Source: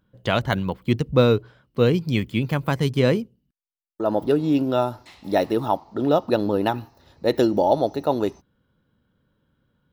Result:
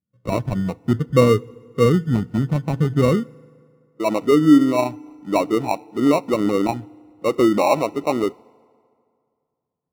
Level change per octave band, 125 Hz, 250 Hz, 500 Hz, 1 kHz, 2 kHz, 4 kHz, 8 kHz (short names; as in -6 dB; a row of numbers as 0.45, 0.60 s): +2.5 dB, +5.0 dB, +1.5 dB, +2.0 dB, 0.0 dB, -2.0 dB, n/a